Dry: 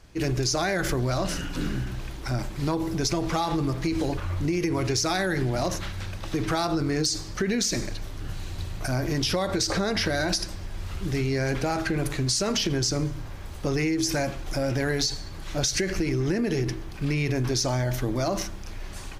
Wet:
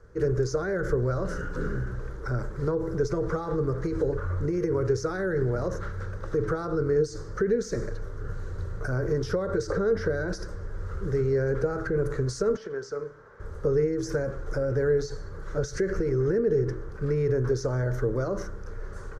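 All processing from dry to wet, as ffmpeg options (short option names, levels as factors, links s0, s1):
-filter_complex "[0:a]asettb=1/sr,asplit=3[s0][s1][s2];[s0]atrim=end=12.564[s3];[s1]atrim=start=12.56:end=13.4,asetpts=PTS-STARTPTS,afade=t=in:d=0.004:c=qsin,afade=t=out:st=0.836:d=0.004:c=qsin,highpass=f=1000:p=1,aemphasis=mode=reproduction:type=75kf,aecho=1:1:4.6:0.32,atrim=end_sample=37044[s4];[s2]atrim=start=13.396[s5];[s3][s4]acrossfade=d=0.004:c1=hsin:c2=qsin[s6];[s6][s5]acrossfade=d=0.004:c1=qsin:c2=hsin,firequalizer=gain_entry='entry(110,0);entry(300,-8);entry(450,12);entry(700,-10);entry(1400,5);entry(2500,-22);entry(6200,-12);entry(13000,-22)':delay=0.05:min_phase=1,acrossover=split=480[s7][s8];[s8]acompressor=threshold=0.0251:ratio=6[s9];[s7][s9]amix=inputs=2:normalize=0"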